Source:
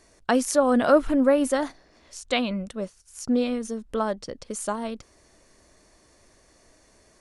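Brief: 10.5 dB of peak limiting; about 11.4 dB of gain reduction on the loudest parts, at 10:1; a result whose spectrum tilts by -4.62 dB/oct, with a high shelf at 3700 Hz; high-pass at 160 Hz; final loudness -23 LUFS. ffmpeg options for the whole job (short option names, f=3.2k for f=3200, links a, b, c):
-af "highpass=160,highshelf=f=3.7k:g=-7,acompressor=threshold=-25dB:ratio=10,volume=11dB,alimiter=limit=-13dB:level=0:latency=1"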